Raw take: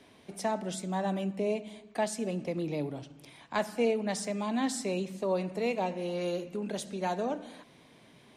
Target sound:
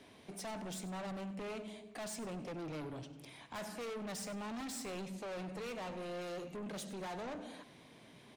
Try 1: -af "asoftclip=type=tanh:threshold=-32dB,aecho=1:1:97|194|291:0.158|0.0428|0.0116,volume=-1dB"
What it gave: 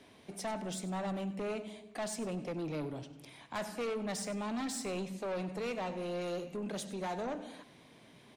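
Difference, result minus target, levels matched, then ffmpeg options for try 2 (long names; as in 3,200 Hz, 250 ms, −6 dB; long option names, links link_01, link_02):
soft clipping: distortion −4 dB
-af "asoftclip=type=tanh:threshold=-40dB,aecho=1:1:97|194|291:0.158|0.0428|0.0116,volume=-1dB"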